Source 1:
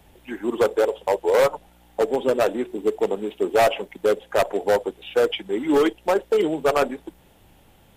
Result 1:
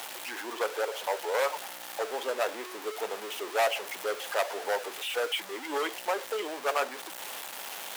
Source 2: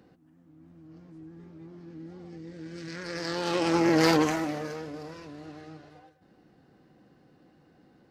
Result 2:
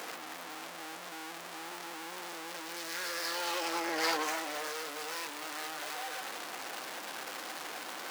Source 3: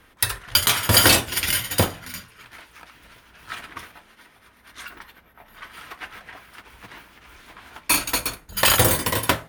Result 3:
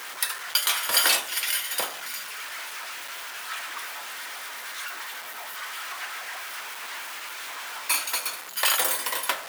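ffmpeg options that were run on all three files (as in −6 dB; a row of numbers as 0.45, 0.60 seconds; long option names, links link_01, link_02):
-af "aeval=exprs='val(0)+0.5*0.0596*sgn(val(0))':channel_layout=same,highpass=740,volume=-6dB"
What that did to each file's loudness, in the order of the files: −10.0, −10.0, −8.5 LU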